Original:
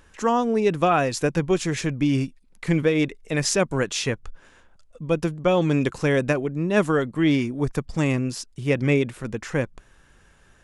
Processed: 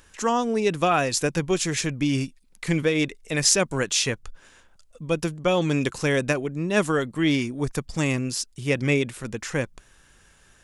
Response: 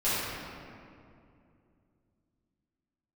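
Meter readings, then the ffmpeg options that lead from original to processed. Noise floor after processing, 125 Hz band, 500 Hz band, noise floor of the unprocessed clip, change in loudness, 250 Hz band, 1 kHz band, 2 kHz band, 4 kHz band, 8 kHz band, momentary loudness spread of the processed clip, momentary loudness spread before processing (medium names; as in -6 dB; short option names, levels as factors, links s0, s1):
-57 dBFS, -2.5 dB, -2.0 dB, -56 dBFS, -1.0 dB, -2.5 dB, -1.5 dB, +1.0 dB, +4.0 dB, +6.0 dB, 8 LU, 8 LU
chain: -af "highshelf=f=2800:g=10,volume=0.75"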